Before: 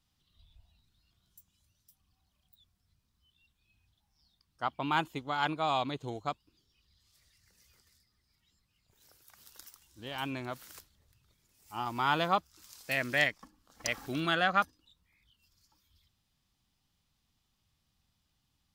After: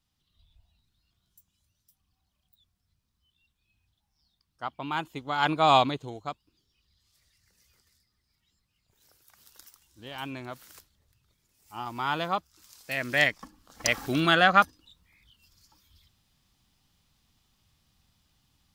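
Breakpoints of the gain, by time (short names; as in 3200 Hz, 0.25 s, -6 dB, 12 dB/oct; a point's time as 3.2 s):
5.05 s -1.5 dB
5.76 s +11.5 dB
6.09 s -0.5 dB
12.91 s -0.5 dB
13.41 s +8 dB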